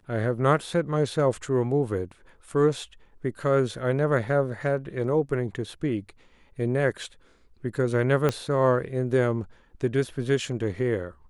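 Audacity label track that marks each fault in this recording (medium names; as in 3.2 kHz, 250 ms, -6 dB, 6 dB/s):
8.290000	8.290000	pop -11 dBFS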